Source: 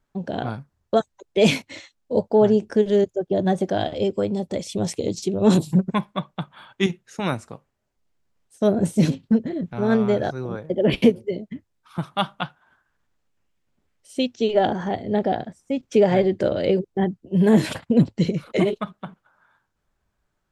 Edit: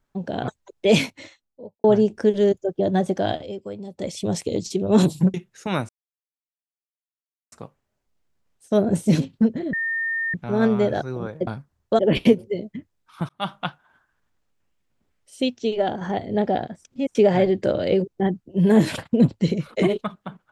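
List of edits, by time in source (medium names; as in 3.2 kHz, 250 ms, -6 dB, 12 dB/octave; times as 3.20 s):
0.48–1.00 s: move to 10.76 s
1.52–2.36 s: studio fade out
3.84–4.61 s: dip -10.5 dB, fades 0.16 s
5.86–6.87 s: delete
7.42 s: insert silence 1.63 s
9.63 s: add tone 1.82 kHz -22 dBFS 0.61 s
12.06–12.31 s: fade in
14.22–14.78 s: fade out linear, to -6.5 dB
15.62–15.92 s: reverse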